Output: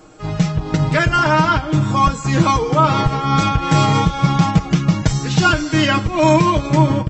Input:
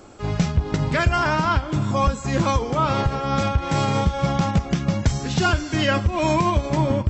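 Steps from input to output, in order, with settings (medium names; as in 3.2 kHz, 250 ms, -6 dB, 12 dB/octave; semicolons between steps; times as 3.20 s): comb 6.4 ms, depth 81%; level rider; trim -1 dB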